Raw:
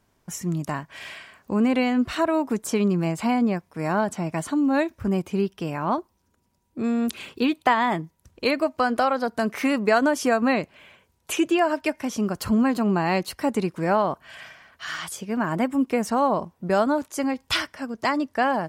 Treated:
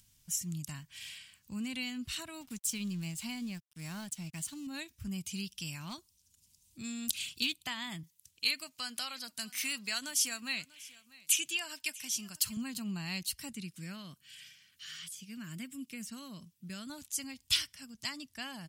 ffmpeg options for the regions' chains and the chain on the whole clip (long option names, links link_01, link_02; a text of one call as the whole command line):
ffmpeg -i in.wav -filter_complex "[0:a]asettb=1/sr,asplit=3[link_01][link_02][link_03];[link_01]atrim=end=2.414[link_04];[link_02]atrim=start=2.41:end=4.67,asetpts=PTS-STARTPTS,afade=type=in:duration=0.004:curve=qsin,afade=type=out:start_time=2.256:duration=0.004:curve=qsin,highpass=41,aeval=exprs='sgn(val(0))*max(abs(val(0))-0.00562,0)':channel_layout=same[link_05];[link_03]atrim=start=4.666[link_06];[link_04][link_05]acrossfade=duration=0.004:curve1=hsin:curve2=qsin[link_07];[link_07][link_06]acrossfade=duration=0.004:curve1=qsin:curve2=hsin,asettb=1/sr,asplit=3[link_08][link_09][link_10];[link_08]atrim=end=5.264[link_11];[link_09]atrim=start=5.26:end=7.52,asetpts=PTS-STARTPTS,afade=type=in:duration=0.004:curve=qsin,afade=type=out:start_time=2.256:duration=0.004:curve=qsin,equalizer=frequency=6300:width=0.41:gain=8,aeval=exprs='clip(val(0),-1,0.2)':channel_layout=same[link_12];[link_10]atrim=start=7.516[link_13];[link_11][link_12]acrossfade=duration=0.004:curve1=hsin:curve2=qsin[link_14];[link_14][link_13]acrossfade=duration=0.004:curve1=qsin:curve2=hsin,asettb=1/sr,asplit=3[link_15][link_16][link_17];[link_15]atrim=end=8.034[link_18];[link_16]atrim=start=8.03:end=12.57,asetpts=PTS-STARTPTS,afade=type=in:duration=0.004:curve=qsin,afade=type=out:start_time=4.536:duration=0.004:curve=qsin,highpass=frequency=220:poles=1,tiltshelf=frequency=850:gain=-4,aecho=1:1:641:0.0841,atrim=end_sample=200214[link_19];[link_17]atrim=start=12.566[link_20];[link_18][link_19]acrossfade=duration=0.004:curve1=hsin:curve2=qsin[link_21];[link_21][link_20]acrossfade=duration=0.004:curve1=qsin:curve2=hsin,asettb=1/sr,asplit=3[link_22][link_23][link_24];[link_22]atrim=end=13.524[link_25];[link_23]atrim=start=13.52:end=16.9,asetpts=PTS-STARTPTS,afade=type=in:duration=0.004:curve=qsin,afade=type=out:start_time=3.376:duration=0.004:curve=qsin,highpass=140,acrossover=split=2700[link_26][link_27];[link_27]acompressor=threshold=-44dB:ratio=4:attack=1:release=60[link_28];[link_26][link_28]amix=inputs=2:normalize=0,equalizer=frequency=830:width=1.9:gain=-14[link_29];[link_24]atrim=start=16.896[link_30];[link_25][link_29]acrossfade=duration=0.004:curve1=hsin:curve2=qsin[link_31];[link_31][link_30]acrossfade=duration=0.004:curve1=qsin:curve2=hsin,firequalizer=gain_entry='entry(120,0);entry(410,-24);entry(2900,4);entry(8000,10)':delay=0.05:min_phase=1,acompressor=mode=upward:threshold=-50dB:ratio=2.5,volume=-8dB" out.wav